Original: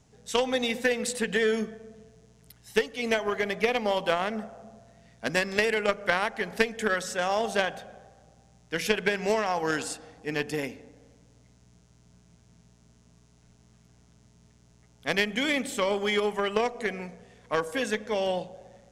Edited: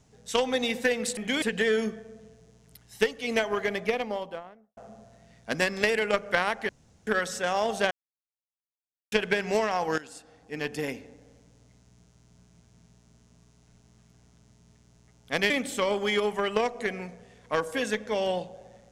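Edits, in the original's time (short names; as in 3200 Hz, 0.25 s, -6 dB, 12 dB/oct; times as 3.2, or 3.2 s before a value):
3.35–4.52 studio fade out
6.44–6.82 room tone
7.66–8.87 mute
9.73–10.68 fade in, from -17.5 dB
15.25–15.5 move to 1.17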